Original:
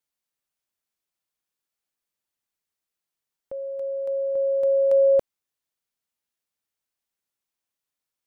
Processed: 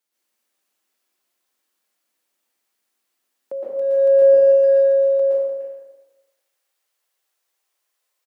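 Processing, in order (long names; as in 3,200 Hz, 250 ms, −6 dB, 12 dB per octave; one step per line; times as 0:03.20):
high-pass filter 200 Hz 24 dB per octave, from 0:04.22 400 Hz
mains-hum notches 50/100/150/200/250/300 Hz
compressor whose output falls as the input rises −27 dBFS, ratio −1
far-end echo of a speakerphone 300 ms, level −12 dB
dense smooth reverb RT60 1.2 s, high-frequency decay 0.75×, pre-delay 105 ms, DRR −7 dB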